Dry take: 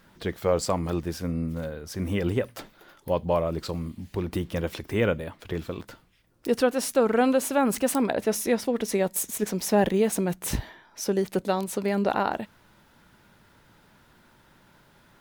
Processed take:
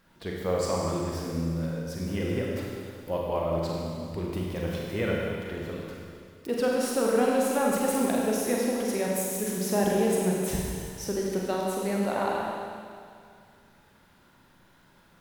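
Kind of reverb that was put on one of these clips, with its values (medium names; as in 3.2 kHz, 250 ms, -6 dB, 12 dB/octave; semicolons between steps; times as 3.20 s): Schroeder reverb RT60 2.2 s, combs from 33 ms, DRR -3 dB; trim -6.5 dB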